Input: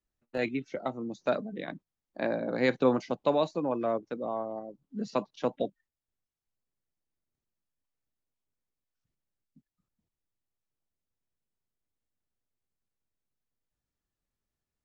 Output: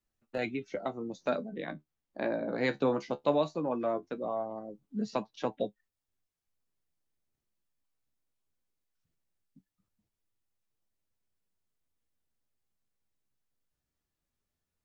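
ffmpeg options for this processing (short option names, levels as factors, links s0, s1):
-filter_complex "[0:a]asettb=1/sr,asplit=3[s0][s1][s2];[s0]atrim=end=1.504[s3];[s1]atrim=start=1.5:end=2.61,asetpts=PTS-STARTPTS,afade=t=in:d=0.004:c=qsin,afade=t=out:st=1.106:d=0.004:c=qsin,highshelf=f=4800:g=-6[s4];[s2]atrim=start=2.606[s5];[s3][s4]acrossfade=d=0.004:c1=hsin:c2=qsin[s6];[s6][s5]acrossfade=d=0.004:c1=qsin:c2=hsin,asplit=2[s7][s8];[s8]acompressor=threshold=0.0141:ratio=6,volume=0.891[s9];[s7][s9]amix=inputs=2:normalize=0,flanger=delay=9.1:depth=5.4:regen=47:speed=0.19:shape=sinusoidal"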